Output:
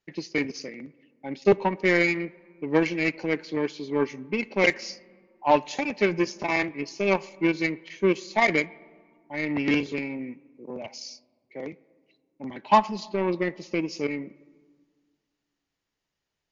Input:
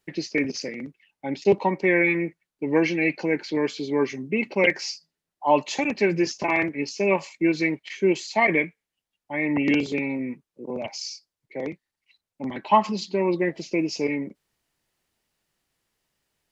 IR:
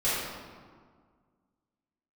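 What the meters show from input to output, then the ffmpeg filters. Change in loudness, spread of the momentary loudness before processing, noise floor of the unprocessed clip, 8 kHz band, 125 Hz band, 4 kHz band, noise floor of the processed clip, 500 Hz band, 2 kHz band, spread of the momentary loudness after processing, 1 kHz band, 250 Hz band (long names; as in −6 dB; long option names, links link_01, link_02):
−1.5 dB, 13 LU, below −85 dBFS, can't be measured, −1.5 dB, −2.0 dB, −84 dBFS, −2.0 dB, −1.5 dB, 18 LU, −0.5 dB, −3.0 dB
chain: -filter_complex "[0:a]aeval=exprs='0.501*(cos(1*acos(clip(val(0)/0.501,-1,1)))-cos(1*PI/2))+0.0355*(cos(7*acos(clip(val(0)/0.501,-1,1)))-cos(7*PI/2))':channel_layout=same,asplit=2[link_01][link_02];[1:a]atrim=start_sample=2205,lowpass=frequency=3600:width=0.5412,lowpass=frequency=3600:width=1.3066[link_03];[link_02][link_03]afir=irnorm=-1:irlink=0,volume=-32dB[link_04];[link_01][link_04]amix=inputs=2:normalize=0" -ar 16000 -c:a libmp3lame -b:a 64k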